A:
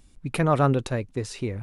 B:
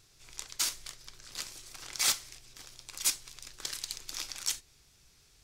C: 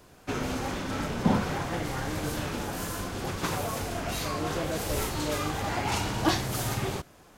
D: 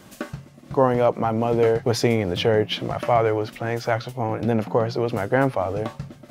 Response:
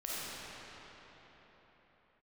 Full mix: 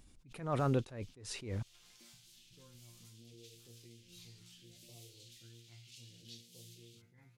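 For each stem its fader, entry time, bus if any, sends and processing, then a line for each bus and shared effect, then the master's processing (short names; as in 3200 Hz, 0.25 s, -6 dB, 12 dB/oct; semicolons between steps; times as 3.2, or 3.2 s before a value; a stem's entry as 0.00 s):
-4.0 dB, 0.00 s, bus B, no send, dry
-6.5 dB, 0.00 s, bus A, no send, compressor 3:1, threshold -39 dBFS, peak gain reduction 12 dB
-17.0 dB, 0.00 s, bus B, no send, steep high-pass 3000 Hz 36 dB/oct; high shelf 7000 Hz -9.5 dB
-17.5 dB, 1.80 s, bus A, no send, band shelf 900 Hz -15 dB 1.3 oct; phaser stages 12, 0.7 Hz, lowest notch 500–1700 Hz
bus A: 0.0 dB, resonator bank A#2 fifth, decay 0.42 s; compressor, threshold -57 dBFS, peak gain reduction 14 dB
bus B: 0.0 dB, low shelf 66 Hz -11.5 dB; limiter -23.5 dBFS, peak gain reduction 9.5 dB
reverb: off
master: low shelf 87 Hz +8 dB; attack slew limiter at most 110 dB/s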